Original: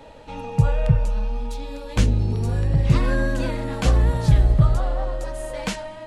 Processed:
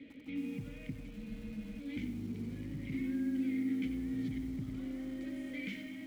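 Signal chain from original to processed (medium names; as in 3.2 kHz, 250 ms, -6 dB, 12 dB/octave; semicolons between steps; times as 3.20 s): peaking EQ 2.1 kHz +9.5 dB 0.32 oct; on a send at -21 dB: reverberation RT60 0.80 s, pre-delay 4 ms; on the sum: saturation -9.5 dBFS, distortion -18 dB; peak limiter -21.5 dBFS, peak gain reduction 11.5 dB; vowel filter i; bass shelf 380 Hz +9 dB; feedback echo behind a low-pass 199 ms, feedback 81%, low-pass 1.1 kHz, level -23.5 dB; compression 2:1, threshold -38 dBFS, peak gain reduction 6.5 dB; spectral freeze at 1.18 s, 0.63 s; bit-crushed delay 92 ms, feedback 35%, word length 9-bit, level -10 dB; trim +1 dB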